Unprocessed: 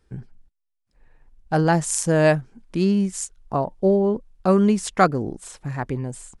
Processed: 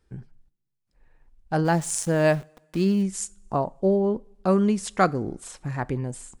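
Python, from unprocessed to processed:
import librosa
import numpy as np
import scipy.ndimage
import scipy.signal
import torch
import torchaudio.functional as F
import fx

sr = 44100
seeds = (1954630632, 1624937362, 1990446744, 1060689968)

p1 = fx.rider(x, sr, range_db=4, speed_s=0.5)
p2 = x + (p1 * 10.0 ** (-2.0 / 20.0))
p3 = fx.sample_gate(p2, sr, floor_db=-30.5, at=(1.64, 3.02), fade=0.02)
p4 = fx.rev_double_slope(p3, sr, seeds[0], early_s=0.35, late_s=1.5, knee_db=-19, drr_db=19.0)
y = p4 * 10.0 ** (-8.0 / 20.0)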